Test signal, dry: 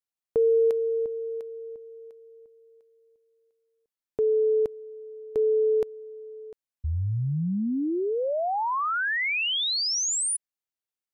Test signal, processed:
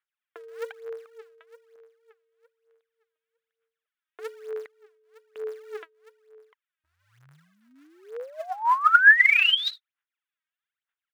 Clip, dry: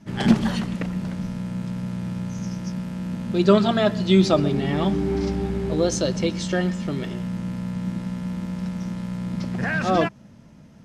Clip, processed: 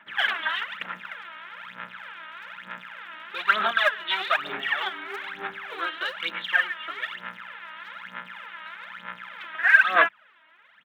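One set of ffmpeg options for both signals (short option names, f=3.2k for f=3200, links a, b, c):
-af "aresample=8000,asoftclip=type=hard:threshold=-16dB,aresample=44100,aphaser=in_gain=1:out_gain=1:delay=3.2:decay=0.76:speed=1.1:type=sinusoidal,highpass=f=1.5k:t=q:w=2.4"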